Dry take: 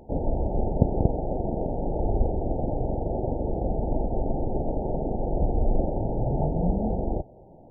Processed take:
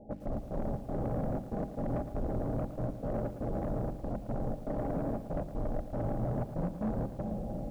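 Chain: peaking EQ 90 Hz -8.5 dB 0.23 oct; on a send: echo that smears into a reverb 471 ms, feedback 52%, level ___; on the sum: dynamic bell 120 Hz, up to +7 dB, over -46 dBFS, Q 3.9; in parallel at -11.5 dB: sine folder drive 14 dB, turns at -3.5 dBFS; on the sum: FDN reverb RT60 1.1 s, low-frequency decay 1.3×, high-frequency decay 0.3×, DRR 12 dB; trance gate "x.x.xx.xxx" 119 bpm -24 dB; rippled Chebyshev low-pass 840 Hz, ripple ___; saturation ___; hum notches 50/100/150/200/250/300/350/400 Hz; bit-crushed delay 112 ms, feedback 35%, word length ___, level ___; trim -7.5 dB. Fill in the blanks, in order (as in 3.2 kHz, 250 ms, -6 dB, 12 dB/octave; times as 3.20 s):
-9 dB, 9 dB, -20 dBFS, 8-bit, -10.5 dB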